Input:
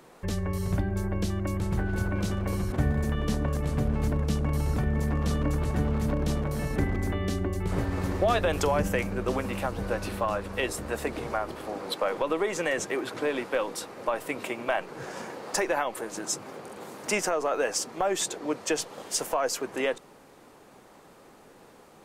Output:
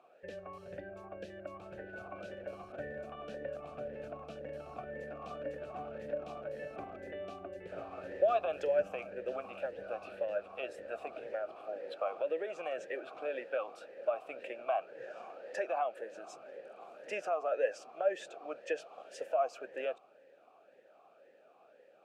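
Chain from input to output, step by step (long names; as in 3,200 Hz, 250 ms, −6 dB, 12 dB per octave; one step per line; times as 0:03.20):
formant filter swept between two vowels a-e 1.9 Hz
level +1 dB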